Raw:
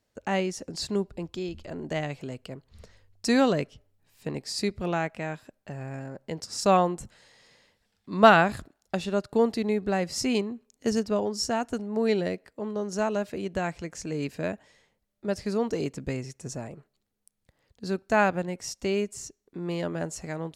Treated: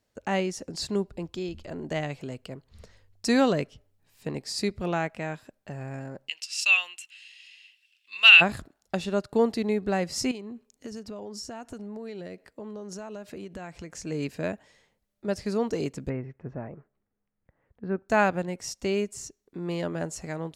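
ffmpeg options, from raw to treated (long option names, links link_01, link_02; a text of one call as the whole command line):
ffmpeg -i in.wav -filter_complex "[0:a]asplit=3[link_01][link_02][link_03];[link_01]afade=type=out:start_time=6.27:duration=0.02[link_04];[link_02]highpass=frequency=2700:width_type=q:width=14,afade=type=in:start_time=6.27:duration=0.02,afade=type=out:start_time=8.4:duration=0.02[link_05];[link_03]afade=type=in:start_time=8.4:duration=0.02[link_06];[link_04][link_05][link_06]amix=inputs=3:normalize=0,asettb=1/sr,asplit=3[link_07][link_08][link_09];[link_07]atrim=end=10.314[link_10];[link_08]atrim=start=10.31:end=14.06,asetpts=PTS-STARTPTS,afade=type=in:duration=0.004:curve=qsin,afade=type=out:start_time=3.746:duration=0.004:curve=qsin,acompressor=threshold=-35dB:ratio=8:attack=3.2:release=140:knee=1:detection=peak[link_11];[link_09]atrim=start=14.056[link_12];[link_10][link_11]acrossfade=duration=0.004:curve1=hsin:curve2=qsin[link_13];[link_13][link_12]acrossfade=duration=0.004:curve1=qsin:curve2=hsin,asplit=3[link_14][link_15][link_16];[link_14]afade=type=out:start_time=16.08:duration=0.02[link_17];[link_15]lowpass=frequency=2000:width=0.5412,lowpass=frequency=2000:width=1.3066,afade=type=in:start_time=16.08:duration=0.02,afade=type=out:start_time=18.08:duration=0.02[link_18];[link_16]afade=type=in:start_time=18.08:duration=0.02[link_19];[link_17][link_18][link_19]amix=inputs=3:normalize=0" out.wav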